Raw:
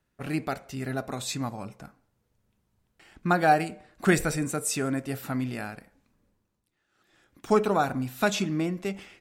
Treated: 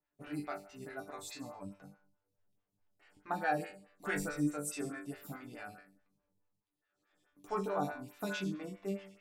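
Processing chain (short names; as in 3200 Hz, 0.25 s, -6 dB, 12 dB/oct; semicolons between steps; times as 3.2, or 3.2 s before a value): resonator bank G2 fifth, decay 0.4 s; photocell phaser 4.7 Hz; gain +5 dB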